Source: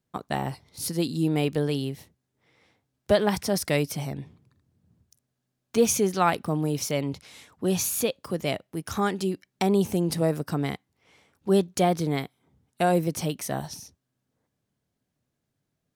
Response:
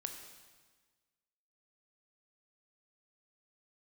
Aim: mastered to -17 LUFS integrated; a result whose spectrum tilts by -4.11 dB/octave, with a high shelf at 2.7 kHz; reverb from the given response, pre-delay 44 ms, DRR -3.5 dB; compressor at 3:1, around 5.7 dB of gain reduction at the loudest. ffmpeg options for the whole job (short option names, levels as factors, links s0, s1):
-filter_complex "[0:a]highshelf=f=2700:g=7,acompressor=threshold=0.0708:ratio=3,asplit=2[s0][s1];[1:a]atrim=start_sample=2205,adelay=44[s2];[s1][s2]afir=irnorm=-1:irlink=0,volume=1.78[s3];[s0][s3]amix=inputs=2:normalize=0,volume=2.11"